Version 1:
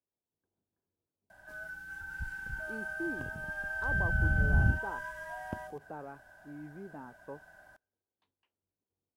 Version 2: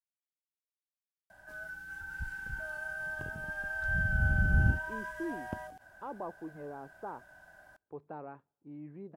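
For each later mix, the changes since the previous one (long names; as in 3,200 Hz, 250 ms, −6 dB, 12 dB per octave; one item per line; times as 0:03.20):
speech: entry +2.20 s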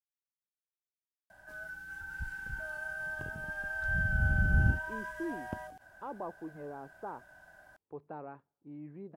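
background: send off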